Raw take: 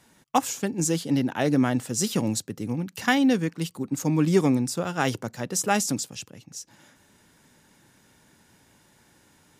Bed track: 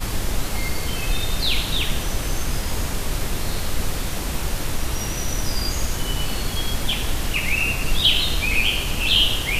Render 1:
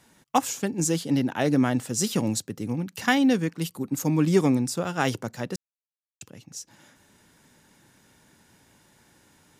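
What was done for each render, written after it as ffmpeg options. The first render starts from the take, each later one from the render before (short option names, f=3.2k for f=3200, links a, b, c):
-filter_complex "[0:a]asettb=1/sr,asplit=3[a][b][c];[a]atrim=end=3.624[d];[b]atrim=start=3.62:end=4.15,asetpts=PTS-STARTPTS,afade=t=in:d=0.004:c=qsin,afade=t=out:st=0.526:d=0.004:c=qsin,equalizer=f=12k:t=o:w=0.36:g=8.5[e];[c]atrim=start=4.146[f];[d][e]acrossfade=d=0.004:c1=hsin:c2=qsin[g];[g][f]acrossfade=d=0.004:c1=qsin:c2=hsin,asplit=3[h][i][j];[h]atrim=end=5.56,asetpts=PTS-STARTPTS,afade=t=out:st=5.556:d=0.004:c=hsin[k];[i]atrim=start=5.56:end=6.21,asetpts=PTS-STARTPTS,volume=0[l];[j]atrim=start=6.21,asetpts=PTS-STARTPTS,afade=t=in:d=0.004:c=hsin[m];[k][l][m]concat=n=3:v=0:a=1"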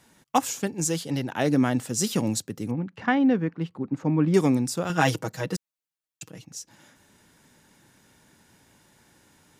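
-filter_complex "[0:a]asettb=1/sr,asplit=3[a][b][c];[a]atrim=end=0.674[d];[b]atrim=start=0.67:end=1.33,asetpts=PTS-STARTPTS,afade=t=in:d=0.004:c=qsin,afade=t=out:st=0.656:d=0.004:c=qsin,equalizer=f=250:t=o:w=0.77:g=-7.5[e];[c]atrim=start=1.326[f];[d][e]acrossfade=d=0.004:c1=hsin:c2=qsin[g];[g][f]acrossfade=d=0.004:c1=qsin:c2=hsin,asettb=1/sr,asplit=3[h][i][j];[h]atrim=end=2.714[k];[i]atrim=start=2.71:end=4.34,asetpts=PTS-STARTPTS,afade=t=in:d=0.004:c=qsin,afade=t=out:st=1.626:d=0.004:c=qsin,lowpass=1.8k[l];[j]atrim=start=4.336[m];[k][l]acrossfade=d=0.004:c1=hsin:c2=qsin[n];[n][m]acrossfade=d=0.004:c1=qsin:c2=hsin,asettb=1/sr,asplit=3[o][p][q];[o]atrim=end=4.894[r];[p]atrim=start=4.89:end=6.45,asetpts=PTS-STARTPTS,afade=t=in:d=0.004:c=qsin,afade=t=out:st=1.556:d=0.004:c=qsin,aecho=1:1:6.3:0.96,atrim=end_sample=68796[s];[q]atrim=start=6.446[t];[r][s]acrossfade=d=0.004:c1=hsin:c2=qsin[u];[u][t]acrossfade=d=0.004:c1=qsin:c2=hsin"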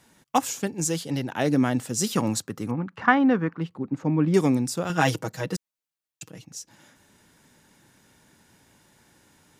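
-filter_complex "[0:a]asettb=1/sr,asplit=3[a][b][c];[a]atrim=end=2.174[d];[b]atrim=start=2.17:end=3.61,asetpts=PTS-STARTPTS,afade=t=in:d=0.004:c=qsin,afade=t=out:st=1.436:d=0.004:c=qsin,equalizer=f=1.2k:t=o:w=1:g=11[e];[c]atrim=start=3.606[f];[d][e]acrossfade=d=0.004:c1=hsin:c2=qsin[g];[g][f]acrossfade=d=0.004:c1=qsin:c2=hsin"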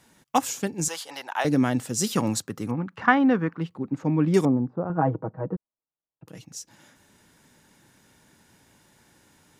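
-filter_complex "[0:a]asettb=1/sr,asplit=3[a][b][c];[a]atrim=end=0.884[d];[b]atrim=start=0.88:end=1.45,asetpts=PTS-STARTPTS,afade=t=in:d=0.004:c=qsin,afade=t=out:st=0.566:d=0.004:c=qsin,highpass=f=910:t=q:w=2.1[e];[c]atrim=start=1.446[f];[d][e]acrossfade=d=0.004:c1=hsin:c2=qsin[g];[g][f]acrossfade=d=0.004:c1=qsin:c2=hsin,asettb=1/sr,asplit=3[h][i][j];[h]atrim=end=4.454[k];[i]atrim=start=4.45:end=6.28,asetpts=PTS-STARTPTS,afade=t=in:d=0.004:c=qsin,afade=t=out:st=1.826:d=0.004:c=qsin,lowpass=f=1.1k:w=0.5412,lowpass=f=1.1k:w=1.3066[l];[j]atrim=start=6.276[m];[k][l]acrossfade=d=0.004:c1=hsin:c2=qsin[n];[n][m]acrossfade=d=0.004:c1=qsin:c2=hsin"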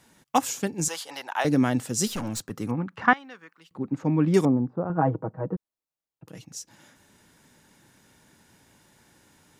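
-filter_complex "[0:a]asettb=1/sr,asplit=3[a][b][c];[a]atrim=end=2.074[d];[b]atrim=start=2.07:end=2.51,asetpts=PTS-STARTPTS,afade=t=in:d=0.004:c=qsin,afade=t=out:st=0.436:d=0.004:c=qsin,aeval=exprs='(tanh(22.4*val(0)+0.3)-tanh(0.3))/22.4':c=same[e];[c]atrim=start=2.506[f];[d][e]acrossfade=d=0.004:c1=hsin:c2=qsin[g];[g][f]acrossfade=d=0.004:c1=qsin:c2=hsin,asettb=1/sr,asplit=3[h][i][j];[h]atrim=end=3.134[k];[i]atrim=start=3.13:end=3.71,asetpts=PTS-STARTPTS,afade=t=in:d=0.004:c=qsin,afade=t=out:st=0.576:d=0.004:c=qsin,aderivative[l];[j]atrim=start=3.706[m];[k][l]acrossfade=d=0.004:c1=hsin:c2=qsin[n];[n][m]acrossfade=d=0.004:c1=qsin:c2=hsin"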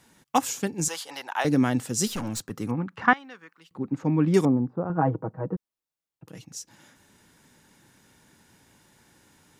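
-af "equalizer=f=620:w=4.7:g=-2.5"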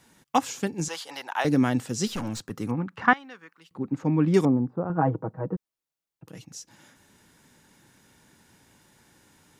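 -filter_complex "[0:a]acrossover=split=6200[a][b];[b]acompressor=threshold=-45dB:ratio=4:attack=1:release=60[c];[a][c]amix=inputs=2:normalize=0"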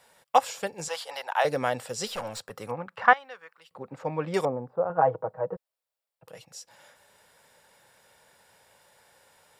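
-af "lowshelf=f=400:t=q:w=3:g=-10,bandreject=f=6.3k:w=5.7"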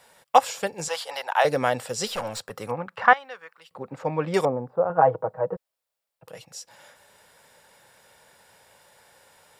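-af "volume=4dB,alimiter=limit=-1dB:level=0:latency=1"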